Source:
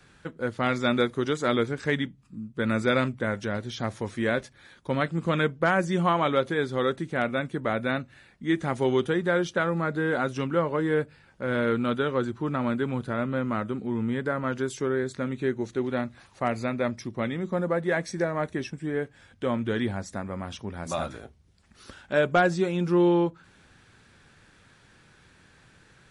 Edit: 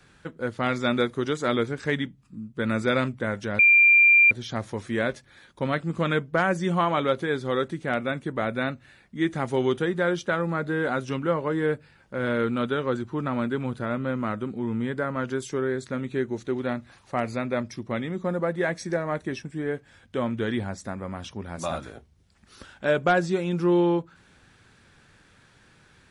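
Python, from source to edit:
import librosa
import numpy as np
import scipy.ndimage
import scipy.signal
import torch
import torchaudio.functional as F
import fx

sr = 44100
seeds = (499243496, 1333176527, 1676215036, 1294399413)

y = fx.edit(x, sr, fx.insert_tone(at_s=3.59, length_s=0.72, hz=2380.0, db=-12.5), tone=tone)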